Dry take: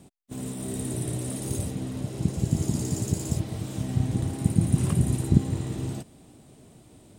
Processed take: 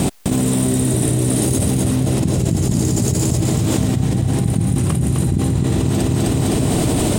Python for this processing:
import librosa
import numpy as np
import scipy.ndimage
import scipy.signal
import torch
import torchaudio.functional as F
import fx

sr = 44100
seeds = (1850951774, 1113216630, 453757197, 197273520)

y = fx.rider(x, sr, range_db=3, speed_s=0.5)
y = fx.echo_feedback(y, sr, ms=257, feedback_pct=42, wet_db=-6.0)
y = fx.env_flatten(y, sr, amount_pct=100)